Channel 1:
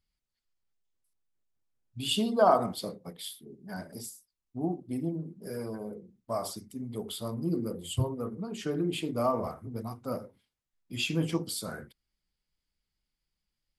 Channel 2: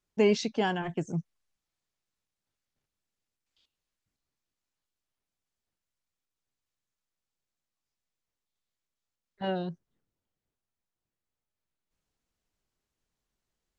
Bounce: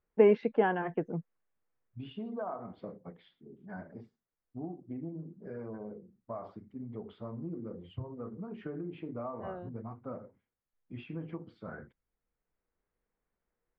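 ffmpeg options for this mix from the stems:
ffmpeg -i stem1.wav -i stem2.wav -filter_complex "[0:a]acompressor=threshold=-33dB:ratio=5,volume=-3.5dB,asplit=2[link_01][link_02];[1:a]highpass=220,equalizer=frequency=480:width=7.9:gain=9,volume=0.5dB[link_03];[link_02]apad=whole_len=607788[link_04];[link_03][link_04]sidechaincompress=threshold=-46dB:ratio=10:attack=7.2:release=1360[link_05];[link_01][link_05]amix=inputs=2:normalize=0,lowpass=frequency=2000:width=0.5412,lowpass=frequency=2000:width=1.3066" out.wav

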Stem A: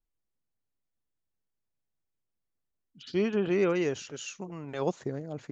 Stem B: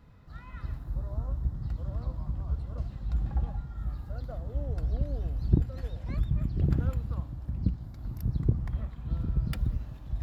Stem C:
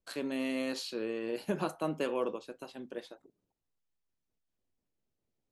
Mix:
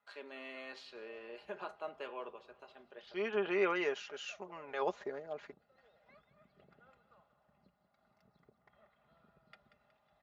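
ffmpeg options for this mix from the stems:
ffmpeg -i stem1.wav -i stem2.wav -i stem3.wav -filter_complex "[0:a]volume=0.5dB[link_01];[1:a]aecho=1:1:1.5:0.45,alimiter=limit=-17.5dB:level=0:latency=1:release=298,volume=-15dB,asplit=2[link_02][link_03];[link_03]volume=-12dB[link_04];[2:a]volume=-6.5dB,asplit=3[link_05][link_06][link_07];[link_06]volume=-21dB[link_08];[link_07]apad=whole_len=243273[link_09];[link_01][link_09]sidechaincompress=threshold=-52dB:ratio=4:attack=9.9:release=347[link_10];[link_04][link_08]amix=inputs=2:normalize=0,aecho=0:1:184|368|552|736|920|1104|1288:1|0.51|0.26|0.133|0.0677|0.0345|0.0176[link_11];[link_10][link_02][link_05][link_11]amix=inputs=4:normalize=0,highpass=630,lowpass=3000,aecho=1:1:4.9:0.5" out.wav

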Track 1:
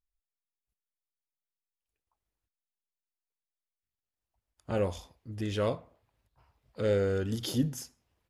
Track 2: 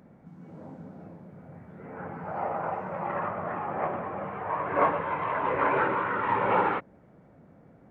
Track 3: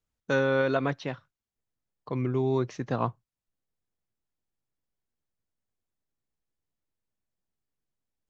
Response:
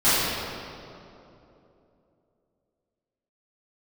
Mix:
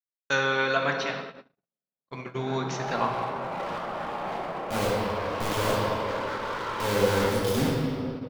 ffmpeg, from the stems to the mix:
-filter_complex "[0:a]acrusher=bits=4:mix=0:aa=0.000001,volume=-4dB,asplit=2[link_01][link_02];[link_02]volume=-14dB[link_03];[1:a]highpass=200,alimiter=limit=-22.5dB:level=0:latency=1:release=15,asoftclip=type=hard:threshold=-33.5dB,adelay=500,volume=-1dB,asplit=2[link_04][link_05];[link_05]volume=-19.5dB[link_06];[2:a]tiltshelf=frequency=810:gain=-9.5,volume=-0.5dB,asplit=2[link_07][link_08];[link_08]volume=-22dB[link_09];[3:a]atrim=start_sample=2205[link_10];[link_03][link_06][link_09]amix=inputs=3:normalize=0[link_11];[link_11][link_10]afir=irnorm=-1:irlink=0[link_12];[link_01][link_04][link_07][link_12]amix=inputs=4:normalize=0,agate=range=-58dB:threshold=-34dB:ratio=16:detection=peak"

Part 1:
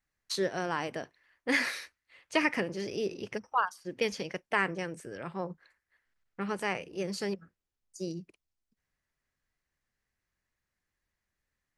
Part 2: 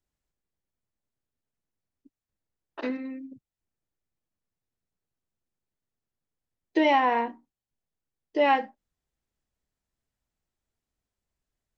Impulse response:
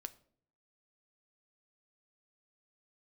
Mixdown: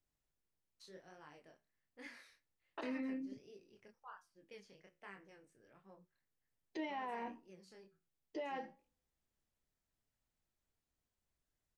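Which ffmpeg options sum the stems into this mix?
-filter_complex "[0:a]flanger=delay=20:depth=7.2:speed=1.3,adelay=500,volume=-18.5dB[link_01];[1:a]acompressor=threshold=-30dB:ratio=6,alimiter=level_in=7.5dB:limit=-24dB:level=0:latency=1:release=13,volume=-7.5dB,volume=-1.5dB,asplit=2[link_02][link_03];[link_03]volume=-5.5dB[link_04];[2:a]atrim=start_sample=2205[link_05];[link_04][link_05]afir=irnorm=-1:irlink=0[link_06];[link_01][link_02][link_06]amix=inputs=3:normalize=0,flanger=delay=7.2:depth=8.2:regen=-71:speed=0.3:shape=sinusoidal"

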